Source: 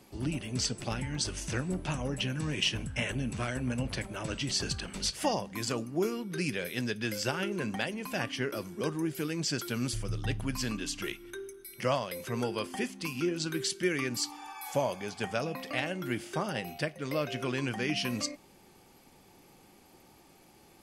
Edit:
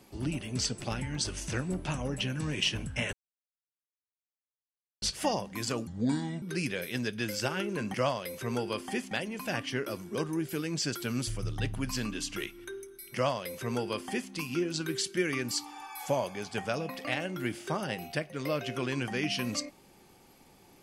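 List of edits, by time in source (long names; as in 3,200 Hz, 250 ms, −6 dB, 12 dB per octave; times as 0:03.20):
0:03.13–0:05.02: silence
0:05.87–0:06.25: play speed 69%
0:11.80–0:12.97: duplicate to 0:07.77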